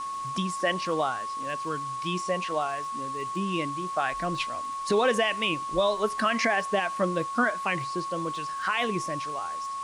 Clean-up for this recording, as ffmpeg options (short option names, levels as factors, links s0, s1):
-af "adeclick=t=4,bandreject=f=1100:w=30,afwtdn=0.0045"